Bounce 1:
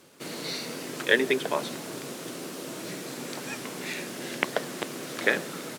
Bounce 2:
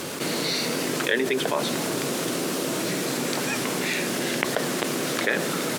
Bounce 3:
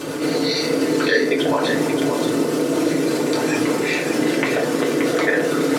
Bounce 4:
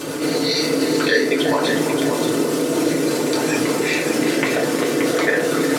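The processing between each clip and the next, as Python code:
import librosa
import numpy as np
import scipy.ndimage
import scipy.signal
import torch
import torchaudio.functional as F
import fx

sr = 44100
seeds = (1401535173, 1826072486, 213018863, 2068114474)

y1 = fx.env_flatten(x, sr, amount_pct=70)
y1 = y1 * 10.0 ** (-4.0 / 20.0)
y2 = fx.envelope_sharpen(y1, sr, power=1.5)
y2 = y2 + 10.0 ** (-6.5 / 20.0) * np.pad(y2, (int(577 * sr / 1000.0), 0))[:len(y2)]
y2 = fx.rev_fdn(y2, sr, rt60_s=0.49, lf_ratio=1.0, hf_ratio=0.55, size_ms=20.0, drr_db=-3.5)
y3 = fx.high_shelf(y2, sr, hz=4800.0, db=5.0)
y3 = y3 + 10.0 ** (-11.5 / 20.0) * np.pad(y3, (int(358 * sr / 1000.0), 0))[:len(y3)]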